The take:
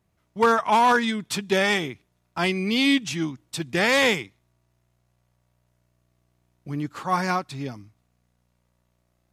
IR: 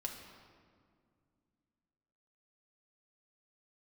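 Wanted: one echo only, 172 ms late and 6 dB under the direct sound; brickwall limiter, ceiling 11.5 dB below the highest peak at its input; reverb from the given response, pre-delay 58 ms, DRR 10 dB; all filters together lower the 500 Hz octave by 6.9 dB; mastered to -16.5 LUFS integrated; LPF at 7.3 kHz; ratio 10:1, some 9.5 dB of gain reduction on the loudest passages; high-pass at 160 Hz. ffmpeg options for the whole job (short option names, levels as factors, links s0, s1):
-filter_complex "[0:a]highpass=160,lowpass=7300,equalizer=f=500:t=o:g=-8.5,acompressor=threshold=0.0501:ratio=10,alimiter=level_in=1.5:limit=0.0631:level=0:latency=1,volume=0.668,aecho=1:1:172:0.501,asplit=2[s0][s1];[1:a]atrim=start_sample=2205,adelay=58[s2];[s1][s2]afir=irnorm=-1:irlink=0,volume=0.335[s3];[s0][s3]amix=inputs=2:normalize=0,volume=10"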